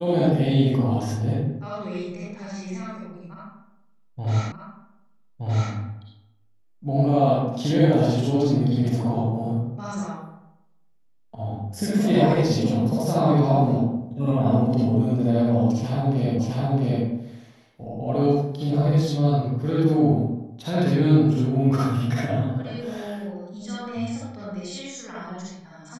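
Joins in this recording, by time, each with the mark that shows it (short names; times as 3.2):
4.52 repeat of the last 1.22 s
16.39 repeat of the last 0.66 s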